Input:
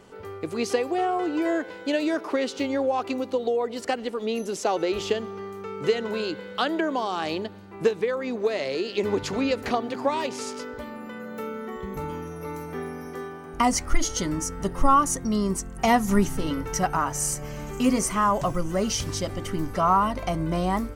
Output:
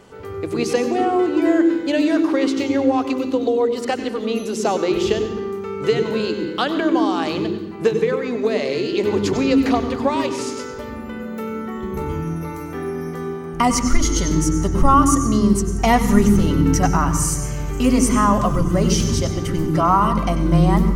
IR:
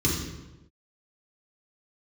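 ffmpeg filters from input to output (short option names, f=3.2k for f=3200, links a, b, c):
-filter_complex "[0:a]asplit=2[a][b];[1:a]atrim=start_sample=2205,adelay=94[c];[b][c]afir=irnorm=-1:irlink=0,volume=-19dB[d];[a][d]amix=inputs=2:normalize=0,volume=4dB"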